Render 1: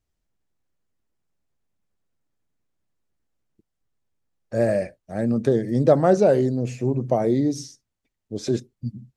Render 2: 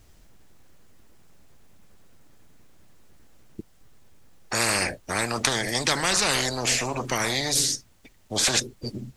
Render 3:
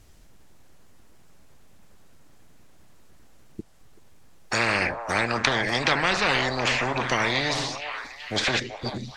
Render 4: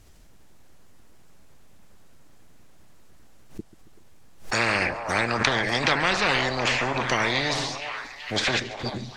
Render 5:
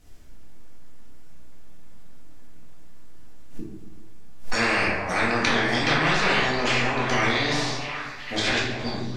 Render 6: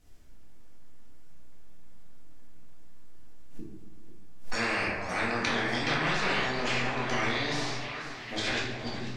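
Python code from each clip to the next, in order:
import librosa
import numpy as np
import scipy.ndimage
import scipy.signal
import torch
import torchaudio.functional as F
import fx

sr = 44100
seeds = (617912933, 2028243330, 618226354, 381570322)

y1 = fx.spectral_comp(x, sr, ratio=10.0)
y1 = y1 * librosa.db_to_amplitude(1.5)
y2 = fx.env_lowpass_down(y1, sr, base_hz=2800.0, full_db=-21.0)
y2 = fx.echo_stepped(y2, sr, ms=382, hz=790.0, octaves=0.7, feedback_pct=70, wet_db=-4.0)
y2 = fx.dynamic_eq(y2, sr, hz=2700.0, q=0.8, threshold_db=-40.0, ratio=4.0, max_db=4)
y2 = y2 * librosa.db_to_amplitude(1.0)
y3 = fx.echo_feedback(y2, sr, ms=138, feedback_pct=54, wet_db=-18.5)
y3 = fx.pre_swell(y3, sr, db_per_s=140.0)
y4 = fx.room_shoebox(y3, sr, seeds[0], volume_m3=260.0, walls='mixed', distance_m=1.9)
y4 = y4 * librosa.db_to_amplitude(-5.0)
y5 = fx.echo_warbled(y4, sr, ms=491, feedback_pct=52, rate_hz=2.8, cents=131, wet_db=-14)
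y5 = y5 * librosa.db_to_amplitude(-7.0)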